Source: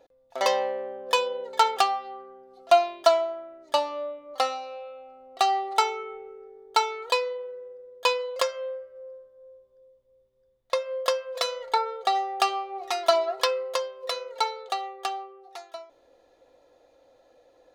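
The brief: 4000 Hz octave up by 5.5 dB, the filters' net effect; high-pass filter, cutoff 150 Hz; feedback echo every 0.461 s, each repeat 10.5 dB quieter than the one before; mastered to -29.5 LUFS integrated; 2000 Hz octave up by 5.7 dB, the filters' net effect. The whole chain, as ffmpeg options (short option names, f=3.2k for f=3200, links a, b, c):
-af "highpass=150,equalizer=f=2k:t=o:g=5.5,equalizer=f=4k:t=o:g=5,aecho=1:1:461|922|1383:0.299|0.0896|0.0269,volume=-5dB"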